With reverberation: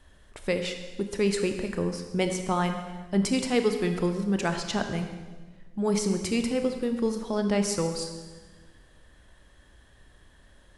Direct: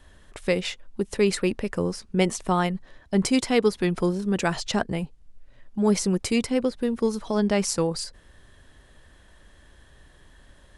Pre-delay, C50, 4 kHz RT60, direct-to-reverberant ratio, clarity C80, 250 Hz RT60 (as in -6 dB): 23 ms, 7.5 dB, 1.3 s, 6.0 dB, 8.5 dB, 1.7 s